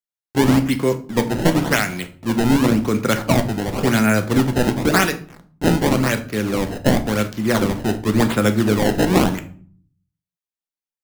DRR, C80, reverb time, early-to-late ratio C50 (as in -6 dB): 7.0 dB, 18.5 dB, 0.45 s, 14.0 dB